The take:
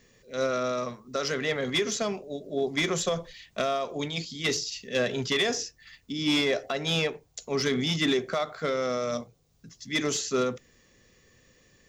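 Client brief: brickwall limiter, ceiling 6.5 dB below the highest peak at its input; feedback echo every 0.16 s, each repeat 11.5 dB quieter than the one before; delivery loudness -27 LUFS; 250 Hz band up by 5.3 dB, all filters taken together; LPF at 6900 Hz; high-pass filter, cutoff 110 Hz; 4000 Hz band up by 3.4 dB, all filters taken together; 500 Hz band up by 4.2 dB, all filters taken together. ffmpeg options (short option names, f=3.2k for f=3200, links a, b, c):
-af "highpass=110,lowpass=6.9k,equalizer=f=250:t=o:g=5.5,equalizer=f=500:t=o:g=3.5,equalizer=f=4k:t=o:g=4.5,alimiter=limit=-18.5dB:level=0:latency=1,aecho=1:1:160|320|480:0.266|0.0718|0.0194,volume=0.5dB"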